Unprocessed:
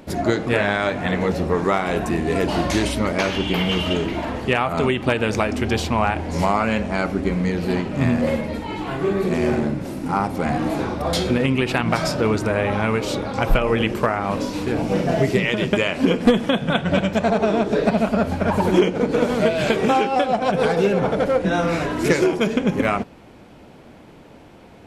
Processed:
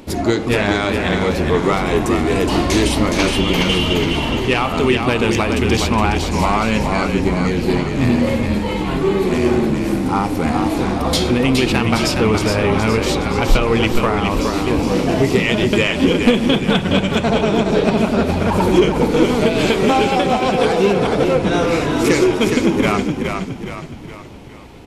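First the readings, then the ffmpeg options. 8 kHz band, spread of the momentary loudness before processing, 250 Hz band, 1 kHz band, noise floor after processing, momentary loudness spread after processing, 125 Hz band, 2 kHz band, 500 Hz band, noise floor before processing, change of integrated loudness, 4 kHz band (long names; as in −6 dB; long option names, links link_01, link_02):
+7.5 dB, 5 LU, +5.0 dB, +3.0 dB, −29 dBFS, 4 LU, +4.5 dB, +3.5 dB, +3.5 dB, −45 dBFS, +4.5 dB, +7.0 dB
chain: -filter_complex "[0:a]acontrast=74,equalizer=frequency=160:width_type=o:width=0.67:gain=-7,equalizer=frequency=630:width_type=o:width=0.67:gain=-7,equalizer=frequency=1600:width_type=o:width=0.67:gain=-6,asplit=7[link_01][link_02][link_03][link_04][link_05][link_06][link_07];[link_02]adelay=417,afreqshift=-34,volume=-5dB[link_08];[link_03]adelay=834,afreqshift=-68,volume=-11.6dB[link_09];[link_04]adelay=1251,afreqshift=-102,volume=-18.1dB[link_10];[link_05]adelay=1668,afreqshift=-136,volume=-24.7dB[link_11];[link_06]adelay=2085,afreqshift=-170,volume=-31.2dB[link_12];[link_07]adelay=2502,afreqshift=-204,volume=-37.8dB[link_13];[link_01][link_08][link_09][link_10][link_11][link_12][link_13]amix=inputs=7:normalize=0"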